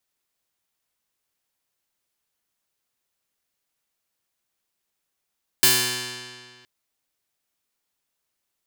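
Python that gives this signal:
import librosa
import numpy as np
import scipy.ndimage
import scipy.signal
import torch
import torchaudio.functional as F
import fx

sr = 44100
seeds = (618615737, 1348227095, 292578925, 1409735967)

y = fx.pluck(sr, length_s=1.02, note=47, decay_s=1.93, pick=0.19, brightness='bright')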